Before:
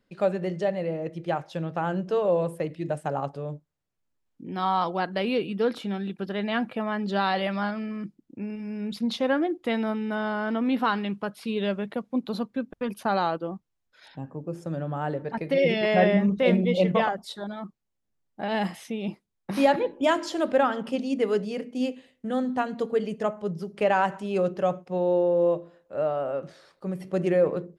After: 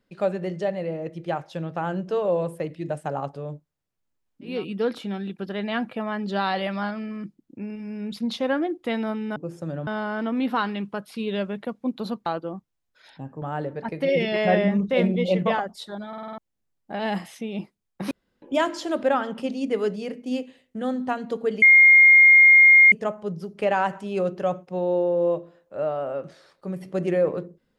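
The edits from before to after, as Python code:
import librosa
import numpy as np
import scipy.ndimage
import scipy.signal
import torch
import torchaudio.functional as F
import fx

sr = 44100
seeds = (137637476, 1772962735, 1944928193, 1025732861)

y = fx.edit(x, sr, fx.cut(start_s=4.53, length_s=0.8, crossfade_s=0.24),
    fx.cut(start_s=12.55, length_s=0.69),
    fx.move(start_s=14.4, length_s=0.51, to_s=10.16),
    fx.stutter_over(start_s=17.57, slice_s=0.05, count=6),
    fx.room_tone_fill(start_s=19.6, length_s=0.31),
    fx.insert_tone(at_s=23.11, length_s=1.3, hz=2130.0, db=-9.0), tone=tone)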